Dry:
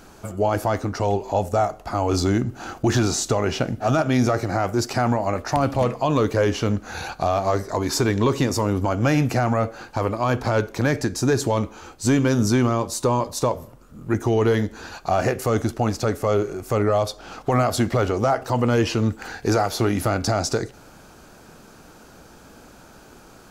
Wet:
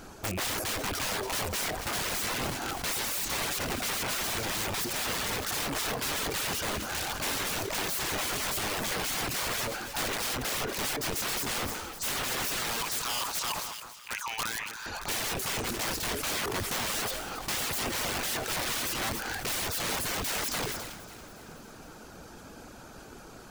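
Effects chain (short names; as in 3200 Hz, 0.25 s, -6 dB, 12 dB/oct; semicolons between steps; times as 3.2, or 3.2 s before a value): rattling part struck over -32 dBFS, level -28 dBFS; 12.81–14.86 elliptic high-pass 930 Hz, stop band 40 dB; wrapped overs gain 26 dB; reverb removal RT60 0.51 s; split-band echo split 1500 Hz, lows 0.204 s, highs 0.28 s, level -13 dB; sustainer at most 39 dB/s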